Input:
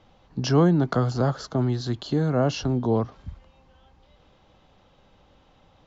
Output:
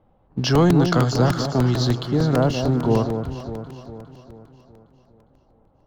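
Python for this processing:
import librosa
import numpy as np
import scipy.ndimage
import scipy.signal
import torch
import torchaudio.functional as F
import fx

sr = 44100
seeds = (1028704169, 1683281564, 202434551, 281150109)

y = fx.env_lowpass(x, sr, base_hz=840.0, full_db=-19.0)
y = fx.high_shelf(y, sr, hz=2800.0, db=fx.steps((0.0, 9.5), (2.05, -4.0)))
y = fx.leveller(y, sr, passes=1)
y = fx.echo_alternate(y, sr, ms=203, hz=960.0, feedback_pct=70, wet_db=-6.5)
y = fx.buffer_crackle(y, sr, first_s=0.55, period_s=0.15, block=128, kind='repeat')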